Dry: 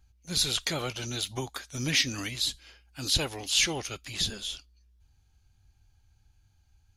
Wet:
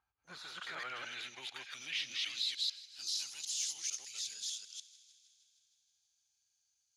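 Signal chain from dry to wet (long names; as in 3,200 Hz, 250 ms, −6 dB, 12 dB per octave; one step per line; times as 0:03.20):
delay that plays each chunk backwards 150 ms, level −0.5 dB
0:03.12–0:03.87: parametric band 500 Hz −13.5 dB 1.2 octaves
in parallel at +1 dB: compressor whose output falls as the input rises −30 dBFS, ratio −0.5
on the sum: soft clipping −18.5 dBFS, distortion −15 dB
on a send: delay with a high-pass on its return 157 ms, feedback 70%, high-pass 1,700 Hz, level −18 dB
on the sum: band-pass filter sweep 1,100 Hz → 6,300 Hz, 0:00.14–0:03.38
level −7.5 dB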